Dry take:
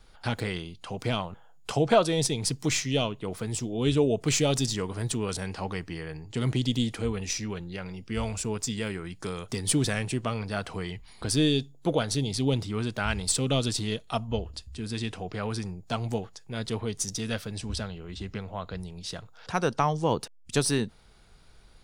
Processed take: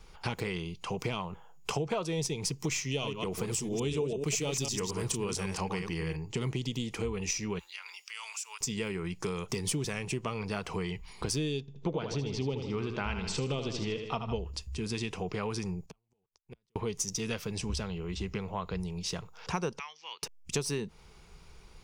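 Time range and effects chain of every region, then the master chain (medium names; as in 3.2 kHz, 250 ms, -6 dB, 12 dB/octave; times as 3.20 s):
2.91–6.16 s: chunks repeated in reverse 111 ms, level -6 dB + peaking EQ 11 kHz +5 dB 2.1 oct
7.59–8.61 s: high-pass 1 kHz 24 dB/octave + treble shelf 2.4 kHz +11.5 dB + compression 2.5:1, threshold -46 dBFS
11.60–14.36 s: Gaussian low-pass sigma 1.7 samples + feedback delay 78 ms, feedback 50%, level -8.5 dB
15.86–16.76 s: level held to a coarse grid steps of 22 dB + inverted gate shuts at -36 dBFS, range -38 dB
19.79–20.23 s: Chebyshev band-pass 2.1–5.1 kHz + distance through air 140 m
whole clip: rippled EQ curve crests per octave 0.77, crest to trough 7 dB; compression 5:1, threshold -32 dBFS; trim +2 dB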